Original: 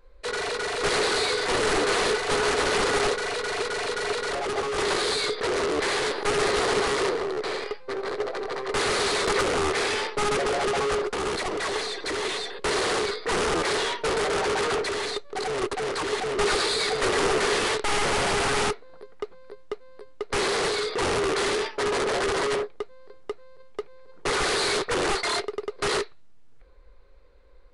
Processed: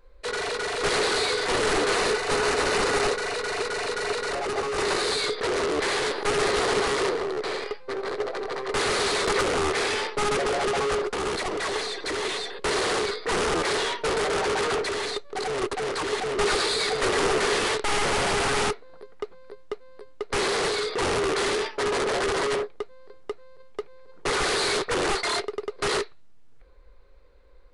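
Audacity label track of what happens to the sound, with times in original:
1.940000	5.120000	notch 3300 Hz

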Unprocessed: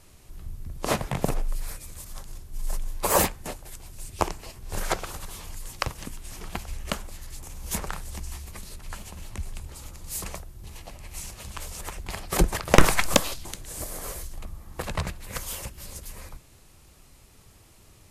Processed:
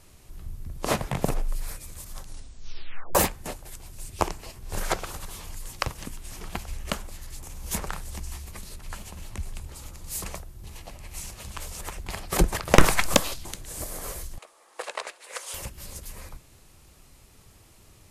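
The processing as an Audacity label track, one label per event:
2.190000	2.190000	tape stop 0.96 s
14.380000	15.540000	elliptic band-pass 460–9800 Hz, stop band 50 dB

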